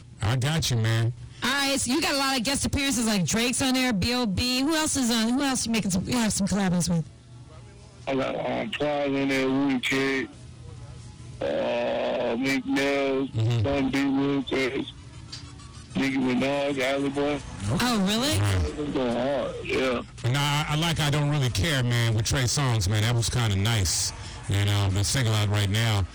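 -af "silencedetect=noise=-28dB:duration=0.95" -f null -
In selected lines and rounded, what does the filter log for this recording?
silence_start: 7.01
silence_end: 8.07 | silence_duration: 1.06
silence_start: 10.24
silence_end: 11.41 | silence_duration: 1.17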